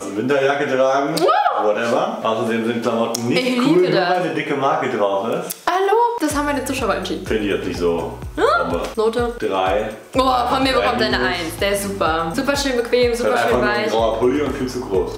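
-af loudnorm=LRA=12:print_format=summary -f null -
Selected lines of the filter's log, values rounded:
Input Integrated:    -18.5 LUFS
Input True Peak:      -2.8 dBTP
Input LRA:             1.6 LU
Input Threshold:     -28.5 LUFS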